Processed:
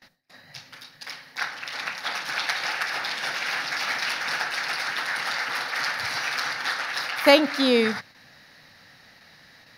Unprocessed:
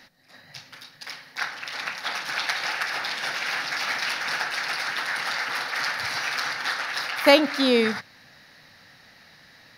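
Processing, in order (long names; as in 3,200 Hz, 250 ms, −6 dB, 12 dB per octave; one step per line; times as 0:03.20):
noise gate with hold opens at −42 dBFS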